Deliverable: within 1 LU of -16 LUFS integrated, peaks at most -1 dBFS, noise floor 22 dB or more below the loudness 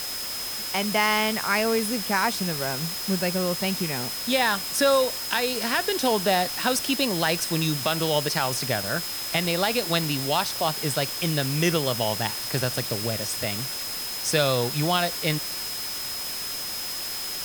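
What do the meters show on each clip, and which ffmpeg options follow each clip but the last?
steady tone 5.1 kHz; tone level -33 dBFS; noise floor -32 dBFS; noise floor target -47 dBFS; loudness -24.5 LUFS; peak level -7.5 dBFS; loudness target -16.0 LUFS
-> -af "bandreject=f=5100:w=30"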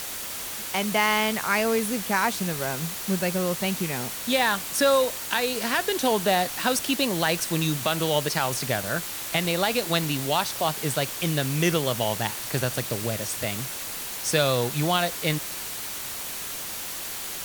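steady tone not found; noise floor -34 dBFS; noise floor target -47 dBFS
-> -af "afftdn=nr=13:nf=-34"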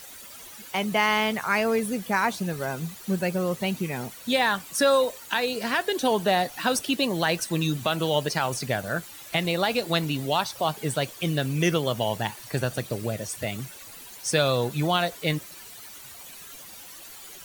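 noise floor -44 dBFS; noise floor target -48 dBFS
-> -af "afftdn=nr=6:nf=-44"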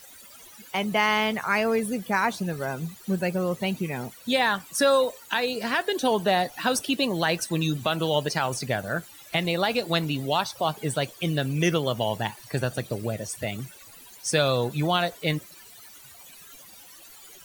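noise floor -48 dBFS; loudness -26.0 LUFS; peak level -8.5 dBFS; loudness target -16.0 LUFS
-> -af "volume=3.16,alimiter=limit=0.891:level=0:latency=1"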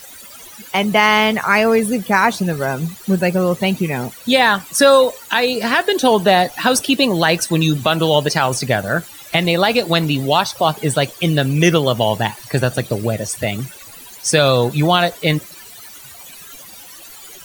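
loudness -16.0 LUFS; peak level -1.0 dBFS; noise floor -38 dBFS

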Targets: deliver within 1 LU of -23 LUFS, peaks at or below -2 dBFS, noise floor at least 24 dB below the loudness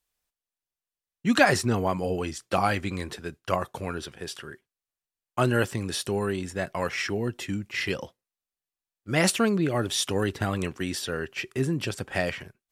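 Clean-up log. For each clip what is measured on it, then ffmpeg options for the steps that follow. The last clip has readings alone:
loudness -27.5 LUFS; peak level -4.0 dBFS; loudness target -23.0 LUFS
-> -af "volume=1.68,alimiter=limit=0.794:level=0:latency=1"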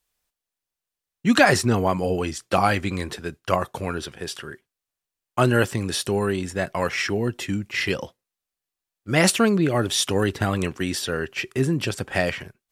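loudness -23.0 LUFS; peak level -2.0 dBFS; noise floor -87 dBFS

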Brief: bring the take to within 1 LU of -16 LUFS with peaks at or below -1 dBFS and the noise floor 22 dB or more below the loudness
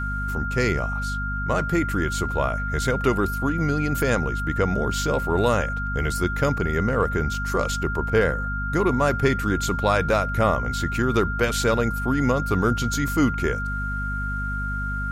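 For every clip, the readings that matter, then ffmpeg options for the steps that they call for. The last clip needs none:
hum 50 Hz; highest harmonic 250 Hz; hum level -26 dBFS; steady tone 1.4 kHz; tone level -28 dBFS; loudness -23.5 LUFS; peak level -5.5 dBFS; loudness target -16.0 LUFS
-> -af "bandreject=f=50:t=h:w=4,bandreject=f=100:t=h:w=4,bandreject=f=150:t=h:w=4,bandreject=f=200:t=h:w=4,bandreject=f=250:t=h:w=4"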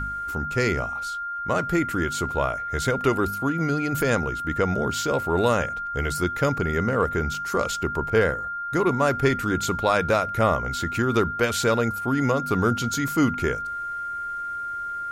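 hum not found; steady tone 1.4 kHz; tone level -28 dBFS
-> -af "bandreject=f=1400:w=30"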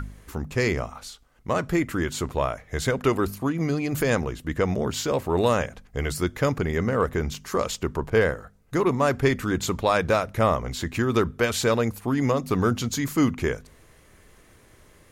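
steady tone not found; loudness -25.0 LUFS; peak level -7.5 dBFS; loudness target -16.0 LUFS
-> -af "volume=2.82,alimiter=limit=0.891:level=0:latency=1"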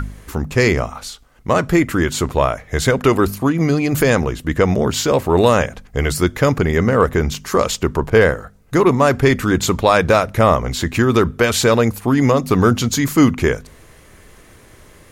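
loudness -16.5 LUFS; peak level -1.0 dBFS; noise floor -46 dBFS

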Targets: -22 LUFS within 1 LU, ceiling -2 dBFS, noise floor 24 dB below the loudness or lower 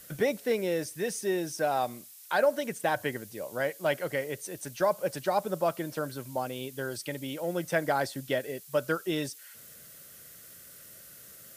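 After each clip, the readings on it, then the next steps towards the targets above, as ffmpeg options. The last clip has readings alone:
noise floor -51 dBFS; noise floor target -55 dBFS; loudness -31.0 LUFS; peak level -14.0 dBFS; loudness target -22.0 LUFS
-> -af "afftdn=nr=6:nf=-51"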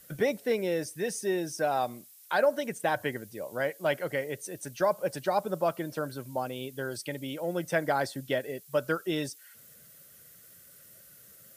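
noise floor -55 dBFS; noise floor target -56 dBFS
-> -af "afftdn=nr=6:nf=-55"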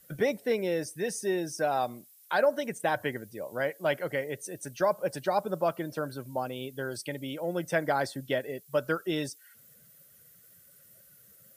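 noise floor -58 dBFS; loudness -31.5 LUFS; peak level -14.0 dBFS; loudness target -22.0 LUFS
-> -af "volume=2.99"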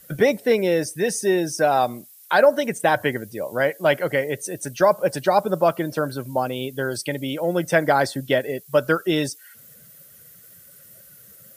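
loudness -22.0 LUFS; peak level -4.5 dBFS; noise floor -48 dBFS

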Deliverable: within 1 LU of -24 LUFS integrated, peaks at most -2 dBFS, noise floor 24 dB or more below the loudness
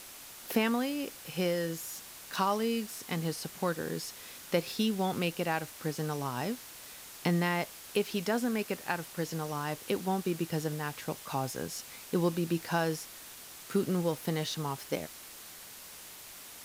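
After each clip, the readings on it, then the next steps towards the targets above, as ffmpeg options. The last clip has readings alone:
noise floor -49 dBFS; noise floor target -58 dBFS; loudness -33.5 LUFS; peak level -15.0 dBFS; loudness target -24.0 LUFS
-> -af "afftdn=nr=9:nf=-49"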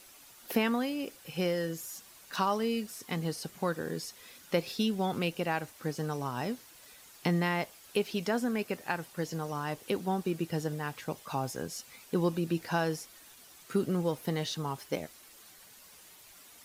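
noise floor -55 dBFS; noise floor target -58 dBFS
-> -af "afftdn=nr=6:nf=-55"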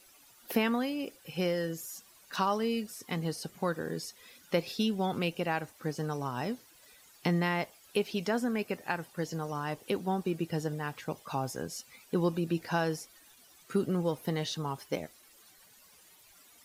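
noise floor -60 dBFS; loudness -33.5 LUFS; peak level -15.5 dBFS; loudness target -24.0 LUFS
-> -af "volume=2.99"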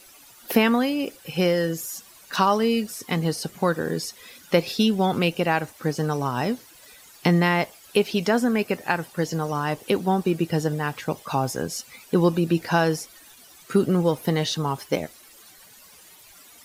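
loudness -24.0 LUFS; peak level -6.0 dBFS; noise floor -50 dBFS

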